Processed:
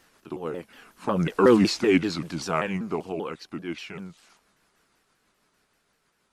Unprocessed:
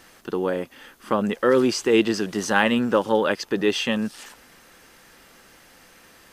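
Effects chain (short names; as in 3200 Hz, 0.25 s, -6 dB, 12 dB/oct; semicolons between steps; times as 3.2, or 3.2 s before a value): repeated pitch sweeps -5 st, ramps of 0.188 s; Doppler pass-by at 1.52, 13 m/s, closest 5.8 m; gain +2 dB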